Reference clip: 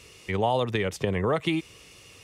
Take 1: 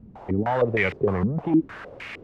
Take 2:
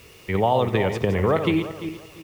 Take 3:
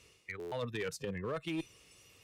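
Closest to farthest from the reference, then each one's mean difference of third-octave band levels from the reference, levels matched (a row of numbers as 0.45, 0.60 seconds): 3, 2, 1; 4.0, 6.0, 10.0 decibels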